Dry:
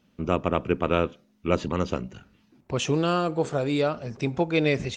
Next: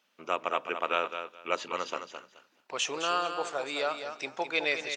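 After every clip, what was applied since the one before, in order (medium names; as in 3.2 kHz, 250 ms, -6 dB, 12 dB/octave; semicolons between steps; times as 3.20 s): high-pass 810 Hz 12 dB/octave; feedback delay 213 ms, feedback 19%, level -8.5 dB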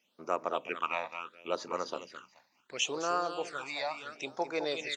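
phase shifter stages 8, 0.72 Hz, lowest notch 390–3200 Hz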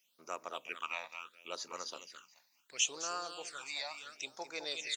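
pre-emphasis filter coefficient 0.9; trim +6 dB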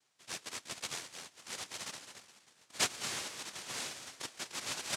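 filtered feedback delay 543 ms, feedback 62%, low-pass 2 kHz, level -18 dB; noise-vocoded speech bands 1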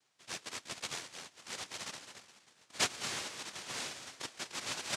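treble shelf 12 kHz -11.5 dB; trim +1 dB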